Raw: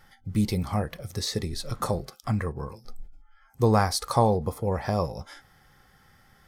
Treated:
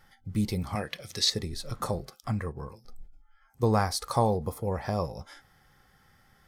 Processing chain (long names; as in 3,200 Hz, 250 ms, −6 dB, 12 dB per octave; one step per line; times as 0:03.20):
0:00.75–0:01.30: meter weighting curve D
0:02.33–0:03.63: transient designer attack −6 dB, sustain −2 dB
0:04.14–0:04.72: high-shelf EQ 9,600 Hz +6.5 dB
level −3.5 dB